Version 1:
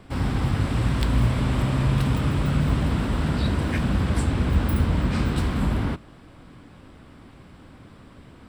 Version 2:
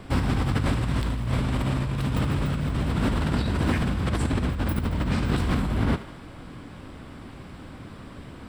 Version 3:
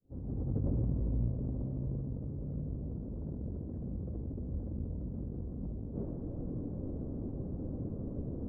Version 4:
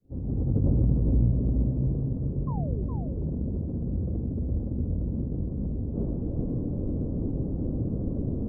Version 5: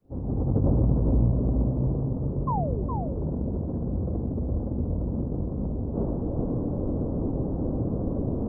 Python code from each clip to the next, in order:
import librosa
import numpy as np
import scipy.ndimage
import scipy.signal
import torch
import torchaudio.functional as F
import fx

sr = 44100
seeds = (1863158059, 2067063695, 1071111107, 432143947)

y1 = fx.over_compress(x, sr, threshold_db=-26.0, ratio=-1.0)
y1 = fx.echo_thinned(y1, sr, ms=74, feedback_pct=62, hz=420.0, wet_db=-13.0)
y1 = F.gain(torch.from_numpy(y1), 1.5).numpy()
y2 = fx.fade_in_head(y1, sr, length_s=2.17)
y2 = scipy.signal.sosfilt(scipy.signal.cheby1(3, 1.0, 510.0, 'lowpass', fs=sr, output='sos'), y2)
y2 = fx.over_compress(y2, sr, threshold_db=-34.0, ratio=-1.0)
y2 = F.gain(torch.from_numpy(y2), -2.5).numpy()
y3 = fx.tilt_shelf(y2, sr, db=5.0, hz=930.0)
y3 = fx.spec_paint(y3, sr, seeds[0], shape='fall', start_s=2.47, length_s=0.37, low_hz=340.0, high_hz=1100.0, level_db=-45.0)
y3 = y3 + 10.0 ** (-6.0 / 20.0) * np.pad(y3, (int(414 * sr / 1000.0), 0))[:len(y3)]
y3 = F.gain(torch.from_numpy(y3), 4.0).numpy()
y4 = fx.peak_eq(y3, sr, hz=960.0, db=13.5, octaves=1.8)